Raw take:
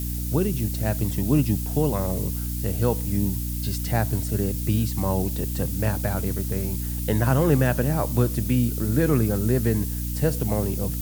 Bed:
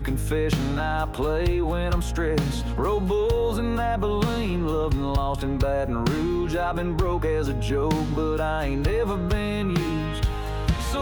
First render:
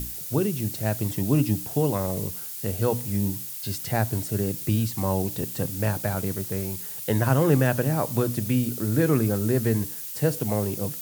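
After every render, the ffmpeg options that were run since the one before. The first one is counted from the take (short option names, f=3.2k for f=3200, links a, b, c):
-af "bandreject=f=60:t=h:w=6,bandreject=f=120:t=h:w=6,bandreject=f=180:t=h:w=6,bandreject=f=240:t=h:w=6,bandreject=f=300:t=h:w=6"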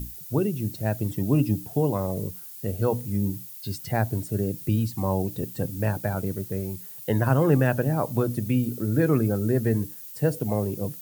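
-af "afftdn=nr=10:nf=-36"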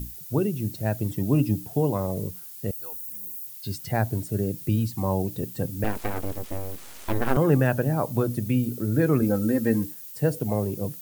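-filter_complex "[0:a]asettb=1/sr,asplit=3[a][b][c];[a]atrim=end=2.714[d];[b]atrim=start=2.71:end=3.47,asetpts=PTS-STARTPTS,afade=t=in:d=0.004:c=qsin,afade=t=out:st=0.756:d=0.004:c=qsin,aderivative[e];[c]atrim=start=3.466[f];[d][e]acrossfade=d=0.004:c1=hsin:c2=qsin[g];[g][f]acrossfade=d=0.004:c1=qsin:c2=hsin,asettb=1/sr,asplit=3[h][i][j];[h]atrim=end=5.844[k];[i]atrim=start=5.84:end=7.37,asetpts=PTS-STARTPTS,afade=t=in:d=0.004:c=qsin,afade=t=out:st=1.526:d=0.004:c=qsin,aeval=exprs='abs(val(0))':c=same[l];[j]atrim=start=7.366[m];[k][l]acrossfade=d=0.004:c1=hsin:c2=qsin[n];[n][m]acrossfade=d=0.004:c1=qsin:c2=hsin,asettb=1/sr,asplit=3[o][p][q];[o]atrim=end=9.224[r];[p]atrim=start=9.22:end=9.92,asetpts=PTS-STARTPTS,afade=t=in:d=0.004:c=qsin,afade=t=out:st=0.696:d=0.004:c=qsin,aecho=1:1:3.8:0.8,atrim=end_sample=30870[s];[q]atrim=start=9.916[t];[r][s]acrossfade=d=0.004:c1=hsin:c2=qsin[u];[u][t]acrossfade=d=0.004:c1=qsin:c2=hsin"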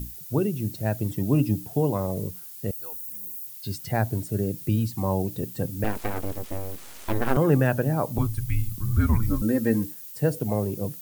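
-filter_complex "[0:a]asettb=1/sr,asplit=3[a][b][c];[a]atrim=end=8.184[d];[b]atrim=start=8.18:end=9.42,asetpts=PTS-STARTPTS,afade=t=in:d=0.004:c=qsin,afade=t=out:st=1.236:d=0.004:c=qsin,afreqshift=-230[e];[c]atrim=start=9.416[f];[d][e]acrossfade=d=0.004:c1=hsin:c2=qsin[g];[g][f]acrossfade=d=0.004:c1=qsin:c2=hsin"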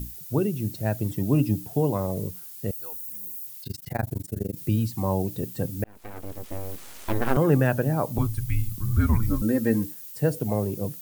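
-filter_complex "[0:a]asplit=3[a][b][c];[a]afade=t=out:st=3.63:d=0.02[d];[b]tremolo=f=24:d=1,afade=t=in:st=3.63:d=0.02,afade=t=out:st=4.55:d=0.02[e];[c]afade=t=in:st=4.55:d=0.02[f];[d][e][f]amix=inputs=3:normalize=0,asplit=2[g][h];[g]atrim=end=5.84,asetpts=PTS-STARTPTS,afade=t=out:st=5.836:d=0.004:c=hsin[i];[h]atrim=start=5.84,asetpts=PTS-STARTPTS,afade=t=in:d=0.89[j];[i][j]concat=n=2:v=0:a=1"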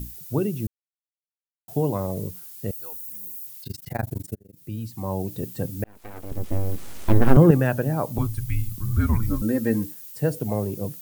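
-filter_complex "[0:a]asettb=1/sr,asplit=3[a][b][c];[a]atrim=end=6.314[d];[b]atrim=start=6.31:end=7.51,asetpts=PTS-STARTPTS,afade=t=in:d=0.004:c=qsin,afade=t=out:st=1.196:d=0.004:c=qsin,lowshelf=f=400:g=12[e];[c]atrim=start=7.506[f];[d][e]acrossfade=d=0.004:c1=hsin:c2=qsin[g];[g][f]acrossfade=d=0.004:c1=qsin:c2=hsin,asplit=4[h][i][j][k];[h]atrim=end=0.67,asetpts=PTS-STARTPTS,afade=t=out:st=0.666:d=0.004:c=hsin[l];[i]atrim=start=0.67:end=1.68,asetpts=PTS-STARTPTS,volume=0[m];[j]atrim=start=1.68:end=4.36,asetpts=PTS-STARTPTS,afade=t=in:d=0.004:c=hsin,afade=t=out:st=2.676:d=0.004:c=hsin[n];[k]atrim=start=4.36,asetpts=PTS-STARTPTS,afade=t=in:d=1.07[o];[l][m][n][o]concat=n=4:v=0:a=1"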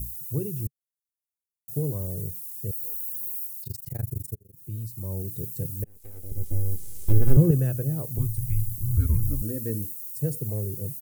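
-af "firequalizer=gain_entry='entry(140,0);entry(220,-13);entry(420,-6);entry(770,-22);entry(6300,-2);entry(10000,4)':delay=0.05:min_phase=1"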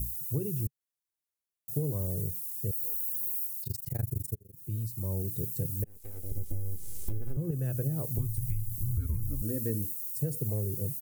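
-af "acompressor=threshold=-26dB:ratio=20"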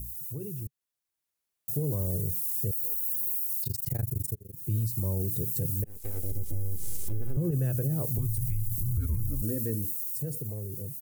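-af "alimiter=level_in=4.5dB:limit=-24dB:level=0:latency=1:release=65,volume=-4.5dB,dynaudnorm=f=200:g=13:m=8dB"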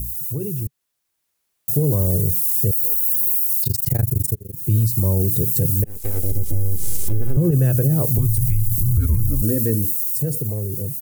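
-af "volume=11.5dB"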